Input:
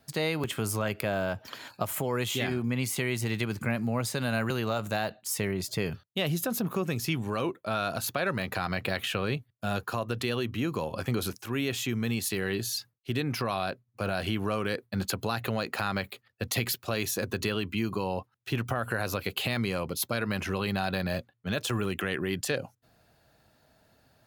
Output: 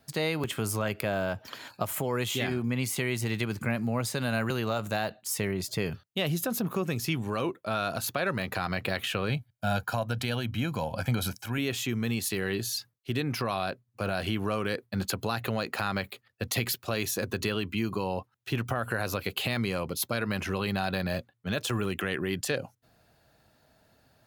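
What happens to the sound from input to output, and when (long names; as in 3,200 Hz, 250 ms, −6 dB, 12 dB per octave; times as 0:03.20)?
0:09.29–0:11.58: comb filter 1.3 ms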